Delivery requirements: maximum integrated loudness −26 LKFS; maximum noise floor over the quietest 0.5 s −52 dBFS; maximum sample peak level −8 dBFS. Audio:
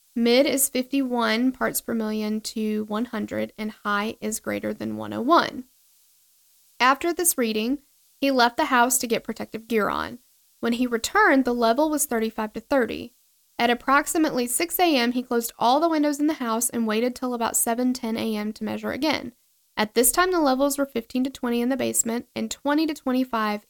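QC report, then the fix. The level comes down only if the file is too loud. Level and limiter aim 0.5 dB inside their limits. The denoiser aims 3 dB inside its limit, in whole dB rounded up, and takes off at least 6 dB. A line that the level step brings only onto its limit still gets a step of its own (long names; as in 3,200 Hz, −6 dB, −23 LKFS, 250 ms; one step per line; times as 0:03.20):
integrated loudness −23.5 LKFS: out of spec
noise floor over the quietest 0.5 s −62 dBFS: in spec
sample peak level −5.0 dBFS: out of spec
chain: level −3 dB
brickwall limiter −8.5 dBFS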